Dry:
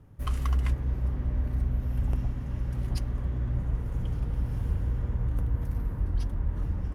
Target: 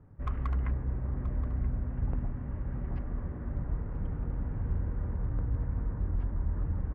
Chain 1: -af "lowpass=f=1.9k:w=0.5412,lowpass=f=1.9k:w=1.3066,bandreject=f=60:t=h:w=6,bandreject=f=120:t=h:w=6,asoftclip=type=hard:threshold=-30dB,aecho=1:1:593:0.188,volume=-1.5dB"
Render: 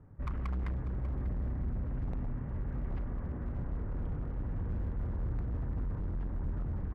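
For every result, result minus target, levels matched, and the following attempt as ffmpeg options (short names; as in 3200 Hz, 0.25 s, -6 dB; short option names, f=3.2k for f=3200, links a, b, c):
hard clip: distortion +14 dB; echo 0.386 s early
-af "lowpass=f=1.9k:w=0.5412,lowpass=f=1.9k:w=1.3066,bandreject=f=60:t=h:w=6,bandreject=f=120:t=h:w=6,asoftclip=type=hard:threshold=-22.5dB,aecho=1:1:593:0.188,volume=-1.5dB"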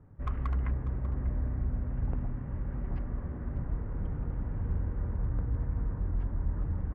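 echo 0.386 s early
-af "lowpass=f=1.9k:w=0.5412,lowpass=f=1.9k:w=1.3066,bandreject=f=60:t=h:w=6,bandreject=f=120:t=h:w=6,asoftclip=type=hard:threshold=-22.5dB,aecho=1:1:979:0.188,volume=-1.5dB"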